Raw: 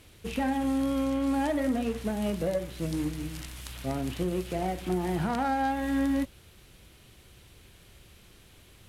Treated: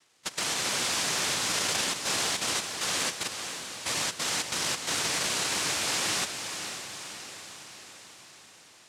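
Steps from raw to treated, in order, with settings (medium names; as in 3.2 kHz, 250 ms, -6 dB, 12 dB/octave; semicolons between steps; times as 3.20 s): level held to a coarse grid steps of 17 dB; noise-vocoded speech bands 1; echo that smears into a reverb 507 ms, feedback 59%, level -8 dB; trim +4.5 dB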